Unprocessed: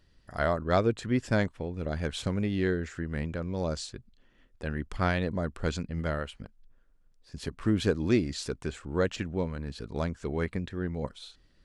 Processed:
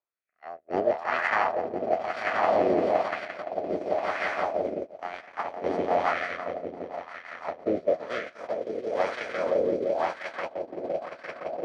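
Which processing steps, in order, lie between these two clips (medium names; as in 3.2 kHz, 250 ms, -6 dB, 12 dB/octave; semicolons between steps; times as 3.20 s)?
spectral levelling over time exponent 0.6; dynamic bell 620 Hz, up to +4 dB, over -34 dBFS, Q 1.2; on a send: echo with a slow build-up 171 ms, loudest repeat 5, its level -4 dB; on the sum: rotary cabinet horn 0.65 Hz; gate -20 dBFS, range -51 dB; FFT filter 140 Hz 0 dB, 3.2 kHz +9 dB, 10 kHz 0 dB; formant shift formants +5 st; wah-wah 1 Hz 370–1700 Hz, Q 2.2; three bands compressed up and down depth 40%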